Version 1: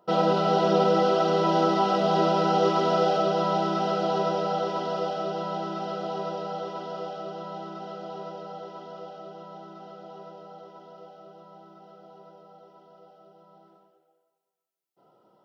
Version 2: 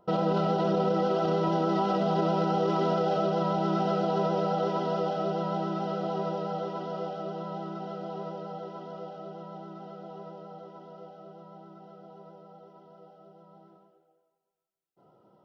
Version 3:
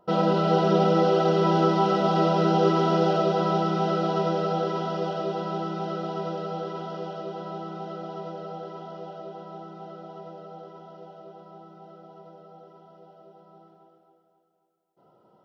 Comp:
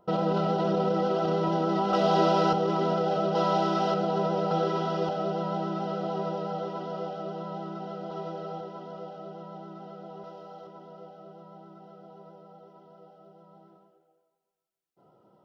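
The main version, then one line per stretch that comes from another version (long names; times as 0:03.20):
2
0:01.93–0:02.53: punch in from 1
0:03.35–0:03.94: punch in from 1
0:04.51–0:05.09: punch in from 3
0:08.11–0:08.61: punch in from 3
0:10.24–0:10.67: punch in from 1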